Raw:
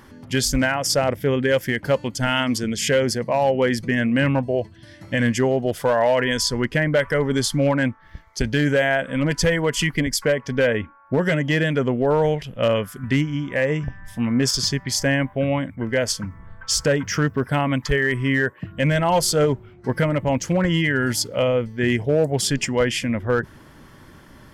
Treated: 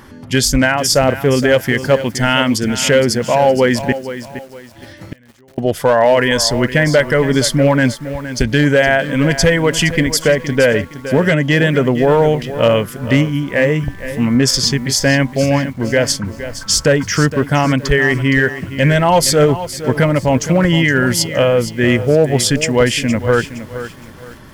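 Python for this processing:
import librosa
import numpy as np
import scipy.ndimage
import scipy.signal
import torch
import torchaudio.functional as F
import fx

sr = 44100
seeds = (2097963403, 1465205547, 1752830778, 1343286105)

y = fx.gate_flip(x, sr, shuts_db=-20.0, range_db=-36, at=(3.92, 5.58))
y = fx.echo_crushed(y, sr, ms=466, feedback_pct=35, bits=7, wet_db=-12.0)
y = y * librosa.db_to_amplitude(7.0)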